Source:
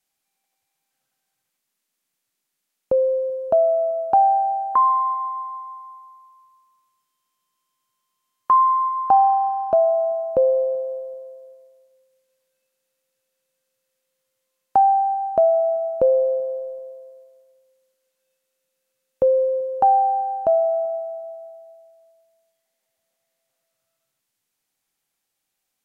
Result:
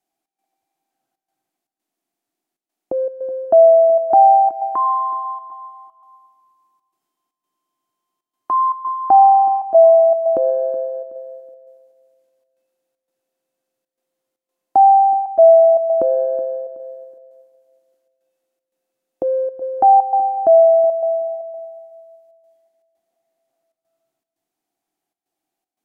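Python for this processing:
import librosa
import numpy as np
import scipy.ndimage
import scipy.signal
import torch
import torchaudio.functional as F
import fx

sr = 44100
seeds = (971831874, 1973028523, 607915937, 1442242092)

p1 = fx.transient(x, sr, attack_db=-4, sustain_db=6)
p2 = fx.small_body(p1, sr, hz=(330.0, 690.0), ring_ms=25, db=18)
p3 = fx.step_gate(p2, sr, bpm=117, pattern='xx.xxxxxx.x', floor_db=-12.0, edge_ms=4.5)
p4 = p3 + fx.echo_feedback(p3, sr, ms=373, feedback_pct=31, wet_db=-16, dry=0)
y = F.gain(torch.from_numpy(p4), -7.0).numpy()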